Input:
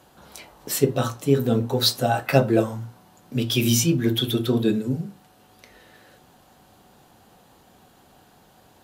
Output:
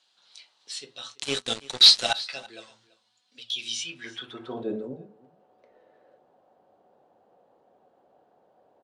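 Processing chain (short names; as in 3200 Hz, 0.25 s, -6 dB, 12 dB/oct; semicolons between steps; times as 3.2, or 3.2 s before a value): band-pass sweep 4000 Hz -> 550 Hz, 3.69–4.74; 1.15–2.13 sample leveller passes 5; elliptic low-pass 9500 Hz, stop band 50 dB; 2.87–3.59 envelope flanger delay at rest 4.3 ms, full sweep at -31 dBFS; on a send: echo 0.335 s -20.5 dB; 4.4–4.94 on the sum: sustainer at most 50 dB/s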